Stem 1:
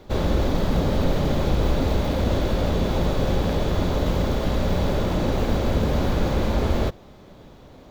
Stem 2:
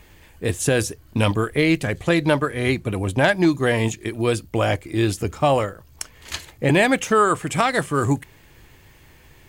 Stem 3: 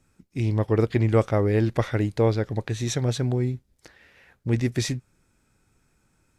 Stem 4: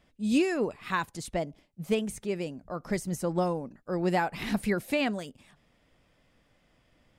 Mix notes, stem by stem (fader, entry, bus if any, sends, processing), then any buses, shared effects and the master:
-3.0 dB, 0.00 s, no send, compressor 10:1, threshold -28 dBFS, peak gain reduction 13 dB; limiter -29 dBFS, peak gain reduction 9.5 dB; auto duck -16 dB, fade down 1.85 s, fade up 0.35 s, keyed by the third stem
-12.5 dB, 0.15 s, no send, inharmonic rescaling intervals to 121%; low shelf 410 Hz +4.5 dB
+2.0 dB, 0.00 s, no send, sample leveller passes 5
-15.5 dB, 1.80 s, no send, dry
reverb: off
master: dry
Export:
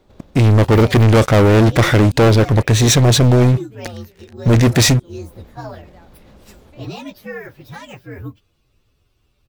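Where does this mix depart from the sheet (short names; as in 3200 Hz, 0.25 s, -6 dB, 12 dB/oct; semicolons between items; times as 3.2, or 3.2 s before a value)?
stem 1 -3.0 dB -> -9.5 dB; stem 4 -15.5 dB -> -23.0 dB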